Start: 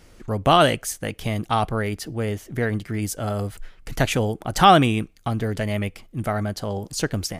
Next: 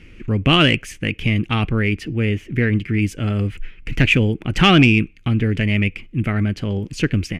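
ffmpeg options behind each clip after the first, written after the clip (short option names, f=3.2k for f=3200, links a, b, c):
-af "firequalizer=gain_entry='entry(320,0);entry(680,-17);entry(2500,8);entry(3800,-11);entry(12000,-22)':delay=0.05:min_phase=1,acontrast=71,volume=1dB"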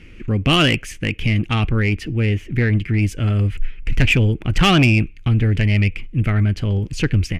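-af "aeval=exprs='0.841*(cos(1*acos(clip(val(0)/0.841,-1,1)))-cos(1*PI/2))+0.00668*(cos(8*acos(clip(val(0)/0.841,-1,1)))-cos(8*PI/2))':c=same,asubboost=boost=2.5:cutoff=120,acontrast=68,volume=-5.5dB"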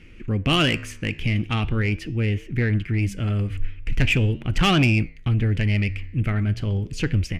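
-af "flanger=delay=7.6:depth=8.9:regen=-89:speed=0.41:shape=triangular"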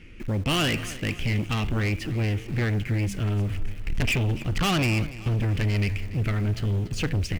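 -filter_complex "[0:a]asplit=2[a][b];[b]acrusher=bits=5:mix=0:aa=0.000001,volume=-11.5dB[c];[a][c]amix=inputs=2:normalize=0,asoftclip=type=tanh:threshold=-21dB,aecho=1:1:288|576|864|1152:0.141|0.0678|0.0325|0.0156"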